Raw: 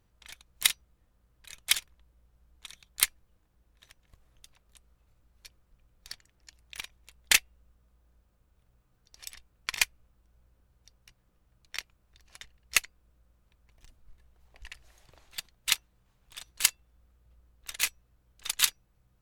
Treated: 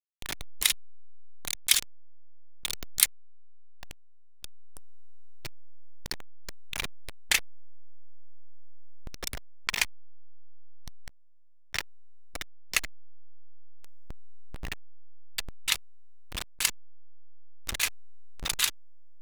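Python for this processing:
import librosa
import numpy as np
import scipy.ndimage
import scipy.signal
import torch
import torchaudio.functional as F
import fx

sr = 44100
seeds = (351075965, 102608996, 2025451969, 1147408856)

y = fx.delta_hold(x, sr, step_db=-38.5)
y = fx.high_shelf(y, sr, hz=2600.0, db=fx.steps((0.0, 2.0), (0.69, 9.0), (3.04, -3.0)))
y = fx.env_flatten(y, sr, amount_pct=50)
y = y * librosa.db_to_amplitude(-5.0)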